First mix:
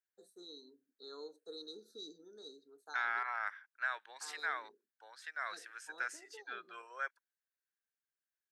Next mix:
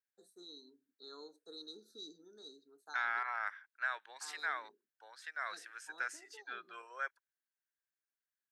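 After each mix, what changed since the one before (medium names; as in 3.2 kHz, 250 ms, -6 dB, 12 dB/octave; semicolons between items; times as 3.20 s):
first voice: add peaking EQ 490 Hz -6.5 dB 0.55 oct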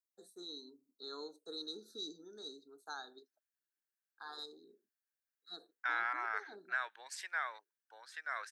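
first voice +5.5 dB; second voice: entry +2.90 s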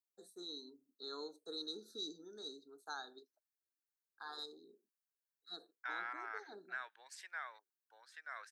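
second voice -7.5 dB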